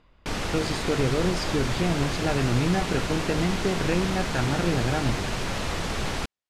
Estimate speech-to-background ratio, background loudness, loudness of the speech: 2.0 dB, −29.5 LKFS, −27.5 LKFS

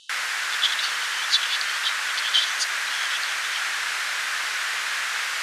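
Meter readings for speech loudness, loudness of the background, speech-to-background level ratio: −26.5 LKFS, −25.0 LKFS, −1.5 dB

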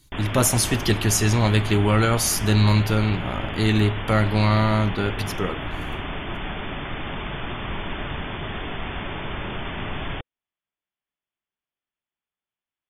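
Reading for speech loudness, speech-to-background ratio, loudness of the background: −21.0 LKFS, 10.0 dB, −31.0 LKFS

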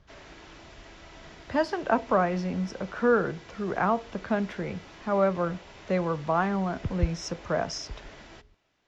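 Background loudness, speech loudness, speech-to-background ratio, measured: −48.0 LKFS, −28.5 LKFS, 19.5 dB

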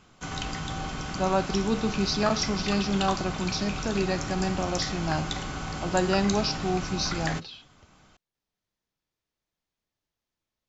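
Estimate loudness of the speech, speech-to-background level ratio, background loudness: −28.5 LKFS, 4.5 dB, −33.0 LKFS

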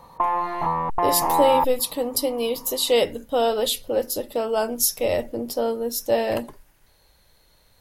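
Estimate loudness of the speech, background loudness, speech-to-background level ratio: −23.5 LKFS, −23.0 LKFS, −0.5 dB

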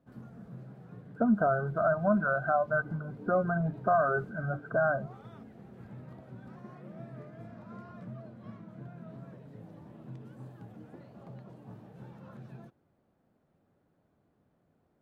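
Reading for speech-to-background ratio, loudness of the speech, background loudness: 19.5 dB, −29.0 LKFS, −48.5 LKFS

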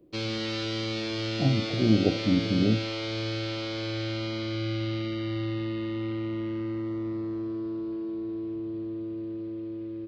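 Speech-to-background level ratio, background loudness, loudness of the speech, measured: 5.5 dB, −32.0 LKFS, −26.5 LKFS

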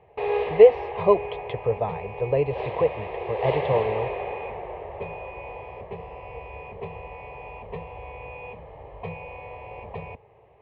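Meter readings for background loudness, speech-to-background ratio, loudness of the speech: −33.5 LKFS, 10.5 dB, −23.0 LKFS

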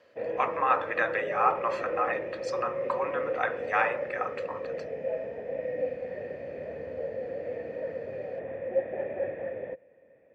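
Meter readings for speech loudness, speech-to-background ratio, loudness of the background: −30.5 LKFS, 3.5 dB, −34.0 LKFS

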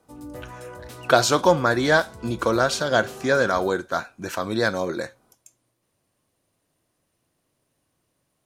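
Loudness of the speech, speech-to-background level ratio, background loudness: −22.0 LKFS, 18.0 dB, −40.0 LKFS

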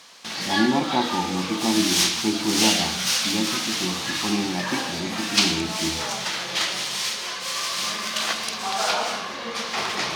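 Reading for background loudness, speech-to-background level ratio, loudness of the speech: −24.0 LKFS, −3.5 dB, −27.5 LKFS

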